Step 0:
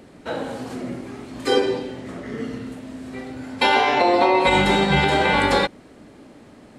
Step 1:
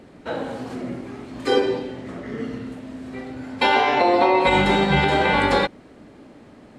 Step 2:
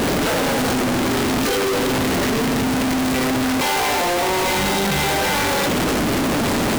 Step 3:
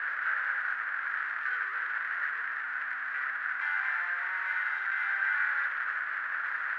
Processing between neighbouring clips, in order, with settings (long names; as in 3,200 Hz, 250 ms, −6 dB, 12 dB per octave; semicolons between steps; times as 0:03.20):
high-shelf EQ 5,900 Hz −8.5 dB
sign of each sample alone; level +3 dB
flat-topped band-pass 1,600 Hz, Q 3.4